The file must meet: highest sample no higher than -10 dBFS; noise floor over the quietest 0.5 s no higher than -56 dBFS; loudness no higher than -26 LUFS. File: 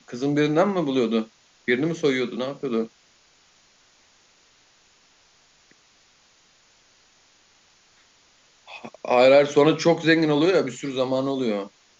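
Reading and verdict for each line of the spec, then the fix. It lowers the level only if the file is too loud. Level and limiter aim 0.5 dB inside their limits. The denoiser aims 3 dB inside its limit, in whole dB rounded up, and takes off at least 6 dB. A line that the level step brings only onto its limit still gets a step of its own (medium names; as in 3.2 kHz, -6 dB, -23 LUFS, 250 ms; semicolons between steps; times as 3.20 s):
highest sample -5.0 dBFS: fail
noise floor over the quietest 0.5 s -59 dBFS: pass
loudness -21.5 LUFS: fail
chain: trim -5 dB; peak limiter -10.5 dBFS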